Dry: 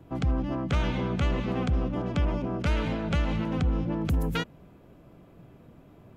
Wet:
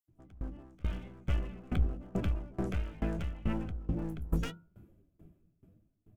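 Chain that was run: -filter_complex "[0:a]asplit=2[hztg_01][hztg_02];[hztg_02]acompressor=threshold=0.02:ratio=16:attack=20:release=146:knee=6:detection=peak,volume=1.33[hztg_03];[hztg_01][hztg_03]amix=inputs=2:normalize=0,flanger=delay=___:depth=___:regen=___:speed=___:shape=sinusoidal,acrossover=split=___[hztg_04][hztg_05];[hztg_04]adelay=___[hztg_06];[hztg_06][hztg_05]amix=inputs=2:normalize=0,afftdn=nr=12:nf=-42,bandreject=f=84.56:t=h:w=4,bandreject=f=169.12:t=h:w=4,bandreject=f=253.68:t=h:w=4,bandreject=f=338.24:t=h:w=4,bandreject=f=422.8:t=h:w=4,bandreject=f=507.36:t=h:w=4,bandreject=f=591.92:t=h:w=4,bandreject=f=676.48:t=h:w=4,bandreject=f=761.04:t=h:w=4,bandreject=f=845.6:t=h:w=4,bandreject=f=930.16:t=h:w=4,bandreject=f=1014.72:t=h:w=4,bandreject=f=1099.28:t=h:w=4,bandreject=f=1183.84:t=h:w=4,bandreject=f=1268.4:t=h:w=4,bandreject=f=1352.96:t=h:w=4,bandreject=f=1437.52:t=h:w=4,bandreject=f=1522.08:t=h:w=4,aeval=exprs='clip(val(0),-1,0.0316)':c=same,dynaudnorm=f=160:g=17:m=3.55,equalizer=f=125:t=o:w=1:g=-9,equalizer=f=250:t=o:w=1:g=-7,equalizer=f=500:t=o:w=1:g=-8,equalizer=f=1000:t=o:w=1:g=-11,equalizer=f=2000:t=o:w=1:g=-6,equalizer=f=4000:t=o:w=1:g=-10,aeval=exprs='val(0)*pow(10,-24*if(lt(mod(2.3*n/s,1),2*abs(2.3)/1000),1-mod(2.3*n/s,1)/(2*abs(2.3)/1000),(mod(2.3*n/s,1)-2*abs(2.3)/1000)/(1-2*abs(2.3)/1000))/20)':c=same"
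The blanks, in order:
8.9, 3.7, 57, 0.85, 5800, 80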